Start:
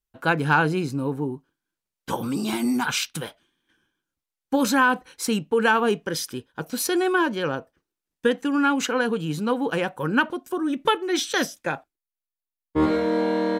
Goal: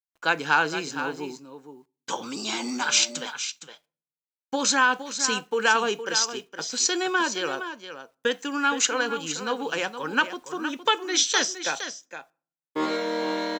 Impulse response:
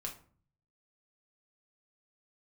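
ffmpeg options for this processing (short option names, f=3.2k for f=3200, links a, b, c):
-filter_complex "[0:a]highpass=180,aemphasis=mode=production:type=riaa,agate=range=-18dB:threshold=-41dB:ratio=16:detection=peak,aresample=16000,aresample=44100,acrusher=bits=9:mix=0:aa=0.000001,aecho=1:1:464:0.299,asplit=2[a][b];[1:a]atrim=start_sample=2205,highshelf=f=4.9k:g=8.5[c];[b][c]afir=irnorm=-1:irlink=0,volume=-17dB[d];[a][d]amix=inputs=2:normalize=0,asettb=1/sr,asplit=3[e][f][g];[e]atrim=end=2.804[h];[f]atrim=start=2.8:end=3.23,asetpts=PTS-STARTPTS,afade=t=in:d=0.004:c=qsin,afade=t=out:st=0.426:d=0.004:c=qsin,aeval=exprs='val(0)+0.0126*sin(2*PI*590*n/s)':c=same[i];[g]atrim=start=3.226[j];[h][i]acrossfade=d=0.004:c1=hsin:c2=qsin[k];[k][j]acrossfade=d=0.004:c1=qsin:c2=hsin,volume=-2.5dB"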